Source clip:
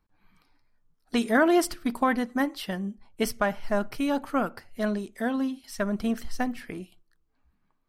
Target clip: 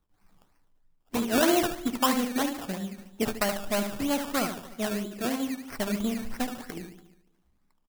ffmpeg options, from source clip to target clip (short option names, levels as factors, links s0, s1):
-filter_complex "[0:a]asplit=2[s0][s1];[s1]aecho=0:1:287|574:0.075|0.0165[s2];[s0][s2]amix=inputs=2:normalize=0,acrossover=split=550[s3][s4];[s3]aeval=exprs='val(0)*(1-0.5/2+0.5/2*cos(2*PI*8.1*n/s))':c=same[s5];[s4]aeval=exprs='val(0)*(1-0.5/2-0.5/2*cos(2*PI*8.1*n/s))':c=same[s6];[s5][s6]amix=inputs=2:normalize=0,asplit=2[s7][s8];[s8]adelay=73,lowpass=f=1700:p=1,volume=0.501,asplit=2[s9][s10];[s10]adelay=73,lowpass=f=1700:p=1,volume=0.5,asplit=2[s11][s12];[s12]adelay=73,lowpass=f=1700:p=1,volume=0.5,asplit=2[s13][s14];[s14]adelay=73,lowpass=f=1700:p=1,volume=0.5,asplit=2[s15][s16];[s16]adelay=73,lowpass=f=1700:p=1,volume=0.5,asplit=2[s17][s18];[s18]adelay=73,lowpass=f=1700:p=1,volume=0.5[s19];[s9][s11][s13][s15][s17][s19]amix=inputs=6:normalize=0[s20];[s7][s20]amix=inputs=2:normalize=0,acrusher=samples=17:mix=1:aa=0.000001:lfo=1:lforange=10.2:lforate=3.1,highshelf=f=7700:g=6"